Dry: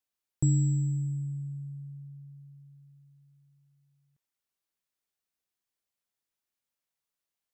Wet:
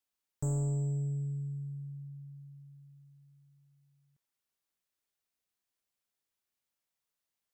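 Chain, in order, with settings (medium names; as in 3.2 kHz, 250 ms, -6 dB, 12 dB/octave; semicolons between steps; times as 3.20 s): saturation -29 dBFS, distortion -9 dB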